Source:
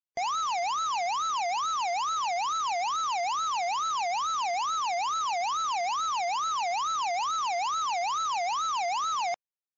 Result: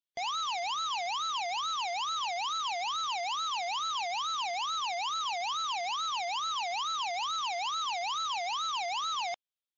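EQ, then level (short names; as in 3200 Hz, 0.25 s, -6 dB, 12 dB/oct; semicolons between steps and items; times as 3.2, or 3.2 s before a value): bell 3400 Hz +13 dB 0.68 oct; -6.0 dB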